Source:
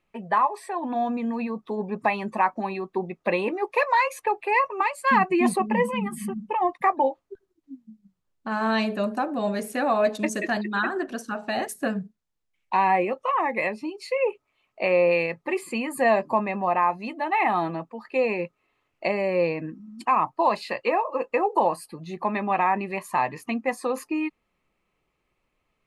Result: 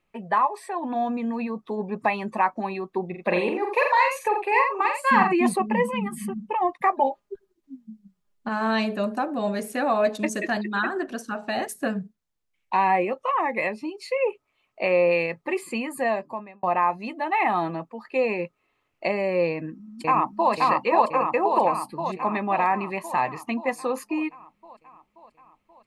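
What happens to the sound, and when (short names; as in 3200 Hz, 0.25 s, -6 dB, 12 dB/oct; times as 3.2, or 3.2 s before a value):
3.05–5.33 tapped delay 45/86 ms -5.5/-7.5 dB
6.92–8.49 comb 4.9 ms, depth 80%
15.74–16.63 fade out
19.51–20.52 echo throw 0.53 s, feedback 65%, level 0 dB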